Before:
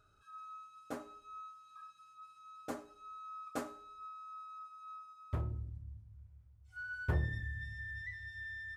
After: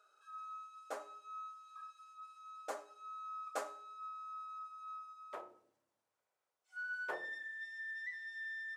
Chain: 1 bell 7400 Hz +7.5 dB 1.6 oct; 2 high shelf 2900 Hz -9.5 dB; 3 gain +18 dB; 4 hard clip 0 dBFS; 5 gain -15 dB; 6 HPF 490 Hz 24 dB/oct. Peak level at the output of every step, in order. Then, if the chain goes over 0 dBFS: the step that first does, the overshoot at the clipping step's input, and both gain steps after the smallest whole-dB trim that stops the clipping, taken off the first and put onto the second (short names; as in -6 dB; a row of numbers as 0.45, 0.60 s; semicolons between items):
-21.0, -22.0, -4.0, -4.0, -19.0, -24.0 dBFS; no overload